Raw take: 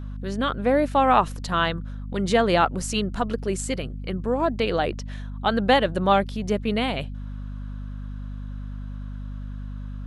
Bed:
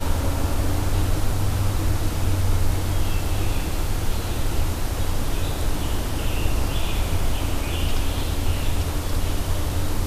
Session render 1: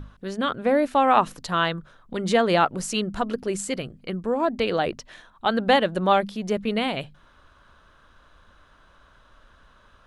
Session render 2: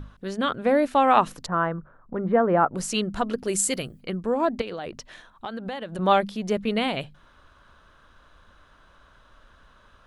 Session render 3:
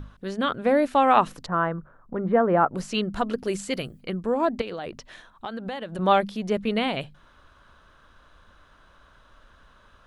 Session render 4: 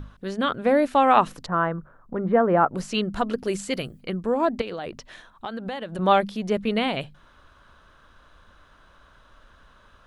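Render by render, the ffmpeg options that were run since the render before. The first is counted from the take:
-af "bandreject=f=50:t=h:w=6,bandreject=f=100:t=h:w=6,bandreject=f=150:t=h:w=6,bandreject=f=200:t=h:w=6,bandreject=f=250:t=h:w=6"
-filter_complex "[0:a]asettb=1/sr,asplit=3[s0][s1][s2];[s0]atrim=end=1.464[s3];[s1]atrim=start=1.46:end=2.75,asetpts=PTS-STARTPTS,afade=t=in:d=0.004:c=qsin,afade=t=out:st=1.286:d=0.004:c=qsin,lowpass=f=1500:w=0.5412,lowpass=f=1500:w=1.3066[s4];[s2]atrim=start=2.746[s5];[s3][s4]acrossfade=d=0.004:c1=hsin:c2=qsin[s6];[s6][s5]acrossfade=d=0.004:c1=qsin:c2=hsin,asplit=3[s7][s8][s9];[s7]afade=t=out:st=3.44:d=0.02[s10];[s8]aemphasis=mode=production:type=50fm,afade=t=in:st=3.44:d=0.02,afade=t=out:st=4:d=0.02[s11];[s9]afade=t=in:st=4:d=0.02[s12];[s10][s11][s12]amix=inputs=3:normalize=0,asettb=1/sr,asplit=3[s13][s14][s15];[s13]atrim=end=4.614[s16];[s14]atrim=start=4.61:end=5.99,asetpts=PTS-STARTPTS,afade=t=in:d=0.004:c=qsin,afade=t=out:st=1.376:d=0.004:c=qsin,acompressor=threshold=0.0355:ratio=12:attack=3.2:release=140:knee=1:detection=peak[s17];[s15]atrim=start=5.986[s18];[s16][s17]acrossfade=d=0.004:c1=hsin:c2=qsin[s19];[s19][s18]acrossfade=d=0.004:c1=qsin:c2=hsin"
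-filter_complex "[0:a]acrossover=split=4700[s0][s1];[s1]acompressor=threshold=0.00501:ratio=4:attack=1:release=60[s2];[s0][s2]amix=inputs=2:normalize=0"
-af "volume=1.12"

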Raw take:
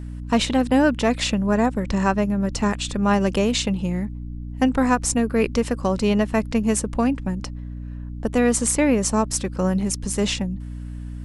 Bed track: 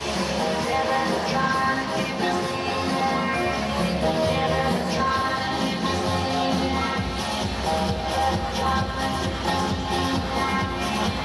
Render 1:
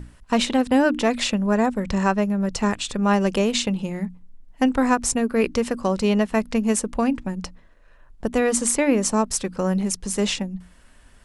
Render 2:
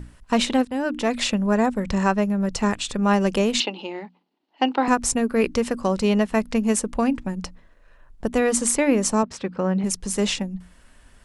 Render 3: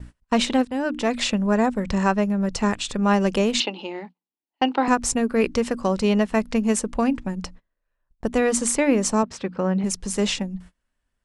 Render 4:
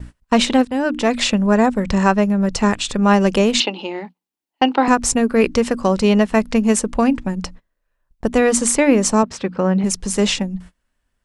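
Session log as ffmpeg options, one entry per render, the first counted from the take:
-af "bandreject=f=60:t=h:w=6,bandreject=f=120:t=h:w=6,bandreject=f=180:t=h:w=6,bandreject=f=240:t=h:w=6,bandreject=f=300:t=h:w=6"
-filter_complex "[0:a]asettb=1/sr,asplit=3[s0][s1][s2];[s0]atrim=end=3.604[s3];[s1]atrim=start=3.6:end=4.88,asetpts=PTS-STARTPTS,afade=t=in:d=0.004:c=qsin,afade=t=out:st=1.276:d=0.004:c=qsin,highpass=f=300:w=0.5412,highpass=f=300:w=1.3066,equalizer=f=330:t=q:w=4:g=5,equalizer=f=490:t=q:w=4:g=-3,equalizer=f=840:t=q:w=4:g=8,equalizer=f=1700:t=q:w=4:g=-3,equalizer=f=2900:t=q:w=4:g=8,equalizer=f=4300:t=q:w=4:g=7,lowpass=f=4800:w=0.5412,lowpass=f=4800:w=1.3066[s4];[s2]atrim=start=4.876[s5];[s3][s4]acrossfade=d=0.004:c1=hsin:c2=qsin[s6];[s6][s5]acrossfade=d=0.004:c1=qsin:c2=hsin,asettb=1/sr,asplit=3[s7][s8][s9];[s7]atrim=end=9.234[s10];[s8]atrim=start=9.23:end=9.84,asetpts=PTS-STARTPTS,afade=t=in:d=0.004:c=qsin,afade=t=out:st=0.606:d=0.004:c=qsin,highpass=100,lowpass=3200[s11];[s9]atrim=start=9.836[s12];[s10][s11]acrossfade=d=0.004:c1=hsin:c2=qsin[s13];[s13][s12]acrossfade=d=0.004:c1=qsin:c2=hsin,asplit=2[s14][s15];[s14]atrim=end=0.65,asetpts=PTS-STARTPTS,afade=t=out:st=0.646:d=0.004:c=hsin:silence=0.211349[s16];[s15]atrim=start=0.65,asetpts=PTS-STARTPTS,afade=t=in:d=0.59:silence=0.211349[s17];[s16][s17]concat=n=2:v=0:a=1"
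-af "lowpass=9800,agate=range=0.0562:threshold=0.00891:ratio=16:detection=peak"
-af "volume=1.88,alimiter=limit=0.891:level=0:latency=1"

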